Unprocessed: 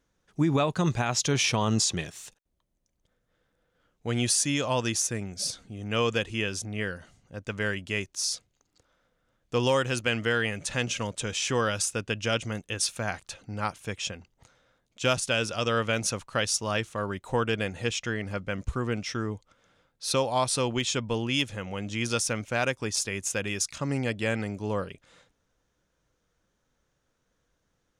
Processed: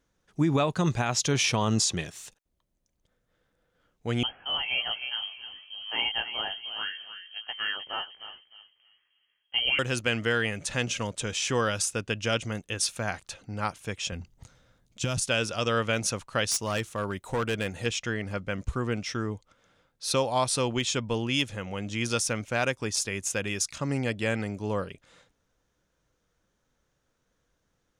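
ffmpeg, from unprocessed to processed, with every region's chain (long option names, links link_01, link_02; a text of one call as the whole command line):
ffmpeg -i in.wav -filter_complex "[0:a]asettb=1/sr,asplit=3[link_01][link_02][link_03];[link_01]atrim=end=4.234[link_04];[link_02]atrim=start=4.23:end=9.79,asetpts=PTS-STARTPTS,afade=type=in:duration=0.004:curve=qsin,afade=type=out:start_time=5.556:duration=0.004:curve=qsin,asplit=2[link_05][link_06];[link_06]adelay=306,lowpass=frequency=1400:poles=1,volume=-8dB,asplit=2[link_07][link_08];[link_08]adelay=306,lowpass=frequency=1400:poles=1,volume=0.33,asplit=2[link_09][link_10];[link_10]adelay=306,lowpass=frequency=1400:poles=1,volume=0.33,asplit=2[link_11][link_12];[link_12]adelay=306,lowpass=frequency=1400:poles=1,volume=0.33[link_13];[link_05][link_07][link_09][link_11][link_13]amix=inputs=5:normalize=0,atrim=end_sample=245196,flanger=delay=15.5:depth=3.5:speed=2.4,lowpass=frequency=2800:width_type=q:width=0.5098,lowpass=frequency=2800:width_type=q:width=0.6013,lowpass=frequency=2800:width_type=q:width=0.9,lowpass=frequency=2800:width_type=q:width=2.563,afreqshift=-3300[link_14];[link_03]atrim=start=9.786[link_15];[link_04][link_14]acrossfade=duration=0.004:curve1=hsin:curve2=qsin[link_16];[link_16][link_15]acrossfade=duration=0.004:curve1=qsin:curve2=hsin,asettb=1/sr,asplit=3[link_17][link_18][link_19];[link_17]atrim=end=14.124[link_20];[link_18]atrim=start=14.12:end=15.24,asetpts=PTS-STARTPTS,afade=type=in:duration=0.004:curve=qsin,afade=type=out:start_time=1.116:duration=0.004:curve=qsin,bass=frequency=250:gain=11,treble=frequency=4000:gain=5,acompressor=threshold=-23dB:ratio=12:attack=3.2:release=140:knee=1:detection=peak[link_21];[link_19]atrim=start=15.236[link_22];[link_20][link_21]acrossfade=duration=0.004:curve1=hsin:curve2=qsin[link_23];[link_23][link_22]acrossfade=duration=0.004:curve1=qsin:curve2=hsin,asettb=1/sr,asplit=3[link_24][link_25][link_26];[link_24]atrim=end=16.514[link_27];[link_25]atrim=start=16.51:end=17.86,asetpts=PTS-STARTPTS,afade=type=in:duration=0.004:curve=qsin,afade=type=out:start_time=1.346:duration=0.004:curve=qsin,highshelf=frequency=10000:gain=10,volume=23dB,asoftclip=hard,volume=-23dB[link_28];[link_26]atrim=start=17.856[link_29];[link_27][link_28]acrossfade=duration=0.004:curve1=hsin:curve2=qsin[link_30];[link_30][link_29]acrossfade=duration=0.004:curve1=qsin:curve2=hsin" out.wav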